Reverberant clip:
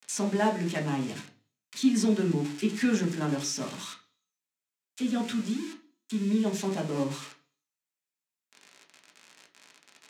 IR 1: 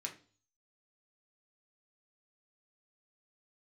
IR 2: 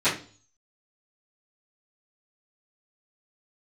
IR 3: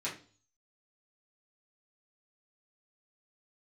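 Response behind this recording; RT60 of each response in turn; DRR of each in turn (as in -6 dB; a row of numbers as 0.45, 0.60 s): 1; 0.40, 0.40, 0.40 s; 0.5, -17.5, -8.0 dB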